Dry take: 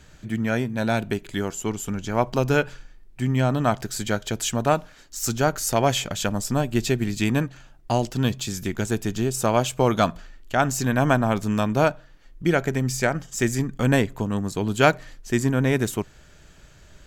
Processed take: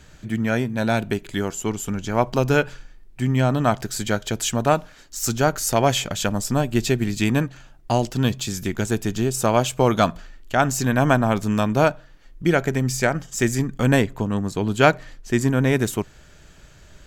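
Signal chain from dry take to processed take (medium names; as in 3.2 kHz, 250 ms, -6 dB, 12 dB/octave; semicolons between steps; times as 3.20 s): 14.05–15.41 s: treble shelf 6.2 kHz -5.5 dB; trim +2 dB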